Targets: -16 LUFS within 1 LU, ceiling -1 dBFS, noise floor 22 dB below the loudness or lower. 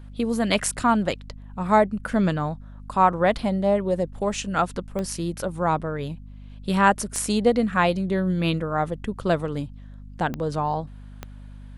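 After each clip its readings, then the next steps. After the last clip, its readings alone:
clicks found 4; hum 50 Hz; highest harmonic 250 Hz; hum level -38 dBFS; loudness -24.0 LUFS; peak level -4.5 dBFS; loudness target -16.0 LUFS
-> de-click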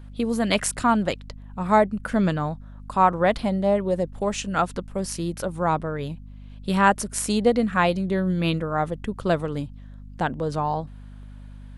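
clicks found 0; hum 50 Hz; highest harmonic 250 Hz; hum level -38 dBFS
-> de-hum 50 Hz, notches 5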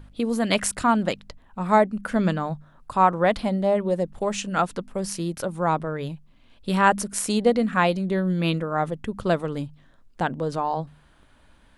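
hum not found; loudness -24.0 LUFS; peak level -4.0 dBFS; loudness target -16.0 LUFS
-> trim +8 dB; peak limiter -1 dBFS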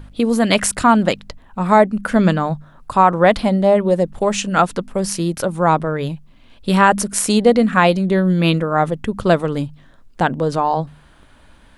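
loudness -16.5 LUFS; peak level -1.0 dBFS; noise floor -48 dBFS

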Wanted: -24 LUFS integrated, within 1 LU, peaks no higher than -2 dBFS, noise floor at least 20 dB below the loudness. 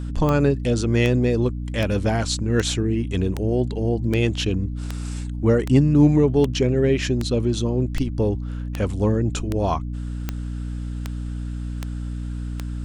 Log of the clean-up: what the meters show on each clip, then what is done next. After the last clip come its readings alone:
clicks found 17; hum 60 Hz; highest harmonic 300 Hz; hum level -26 dBFS; loudness -22.5 LUFS; peak level -3.5 dBFS; loudness target -24.0 LUFS
-> de-click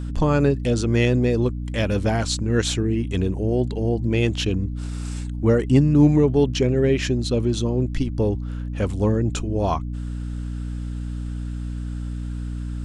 clicks found 0; hum 60 Hz; highest harmonic 300 Hz; hum level -26 dBFS
-> hum notches 60/120/180/240/300 Hz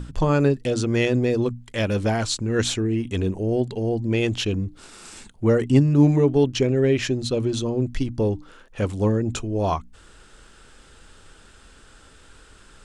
hum not found; loudness -22.5 LUFS; peak level -4.5 dBFS; loudness target -24.0 LUFS
-> trim -1.5 dB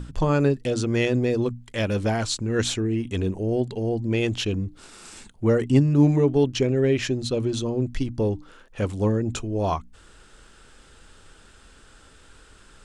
loudness -24.0 LUFS; peak level -6.0 dBFS; noise floor -52 dBFS

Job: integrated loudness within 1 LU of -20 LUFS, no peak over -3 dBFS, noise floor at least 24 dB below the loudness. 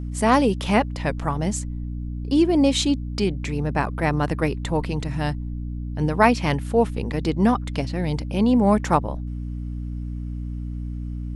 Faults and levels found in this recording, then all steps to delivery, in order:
hum 60 Hz; highest harmonic 300 Hz; hum level -27 dBFS; loudness -23.0 LUFS; peak level -2.0 dBFS; loudness target -20.0 LUFS
-> hum notches 60/120/180/240/300 Hz; trim +3 dB; peak limiter -3 dBFS

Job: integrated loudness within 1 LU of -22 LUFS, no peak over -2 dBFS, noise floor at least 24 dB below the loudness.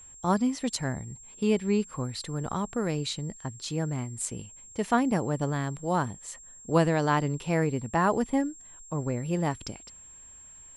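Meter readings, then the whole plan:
steady tone 7.5 kHz; tone level -47 dBFS; loudness -29.0 LUFS; peak level -11.0 dBFS; loudness target -22.0 LUFS
-> band-stop 7.5 kHz, Q 30; trim +7 dB

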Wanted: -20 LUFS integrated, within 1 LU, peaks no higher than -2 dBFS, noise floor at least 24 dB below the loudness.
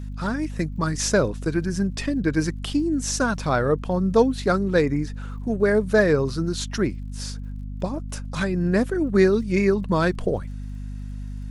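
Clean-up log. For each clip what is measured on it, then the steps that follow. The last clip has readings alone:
tick rate 48 per s; hum 50 Hz; highest harmonic 250 Hz; hum level -30 dBFS; loudness -23.0 LUFS; peak level -5.5 dBFS; loudness target -20.0 LUFS
-> de-click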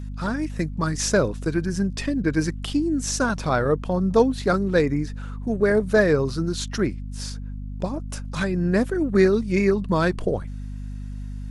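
tick rate 0.52 per s; hum 50 Hz; highest harmonic 250 Hz; hum level -30 dBFS
-> hum notches 50/100/150/200/250 Hz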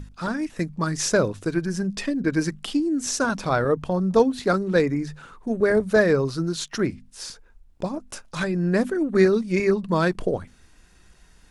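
hum not found; loudness -23.5 LUFS; peak level -6.0 dBFS; loudness target -20.0 LUFS
-> trim +3.5 dB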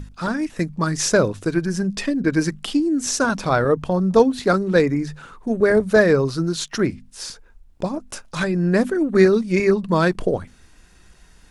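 loudness -20.0 LUFS; peak level -2.5 dBFS; noise floor -51 dBFS

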